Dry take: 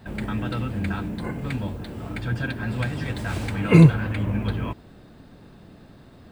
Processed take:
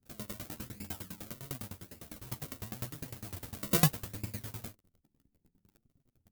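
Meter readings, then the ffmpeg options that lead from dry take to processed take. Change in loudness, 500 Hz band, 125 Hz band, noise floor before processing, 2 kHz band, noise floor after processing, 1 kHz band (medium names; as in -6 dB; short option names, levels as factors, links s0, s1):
-13.0 dB, -15.5 dB, -18.0 dB, -49 dBFS, -15.5 dB, -80 dBFS, -11.5 dB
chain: -af "acrusher=samples=36:mix=1:aa=0.000001:lfo=1:lforange=36:lforate=0.88,aemphasis=mode=production:type=75fm,anlmdn=0.251,flanger=delay=6.9:depth=8.2:regen=7:speed=0.67:shape=triangular,aeval=exprs='val(0)*pow(10,-23*if(lt(mod(9.9*n/s,1),2*abs(9.9)/1000),1-mod(9.9*n/s,1)/(2*abs(9.9)/1000),(mod(9.9*n/s,1)-2*abs(9.9)/1000)/(1-2*abs(9.9)/1000))/20)':c=same,volume=0.447"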